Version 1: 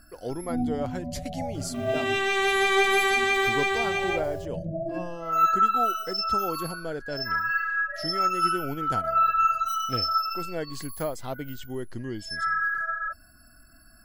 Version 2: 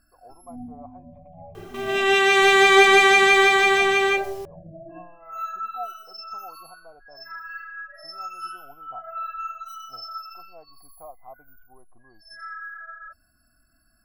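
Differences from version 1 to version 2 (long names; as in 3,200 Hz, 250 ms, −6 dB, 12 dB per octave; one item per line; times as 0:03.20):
speech: add formant resonators in series a
first sound −10.5 dB
second sound +8.0 dB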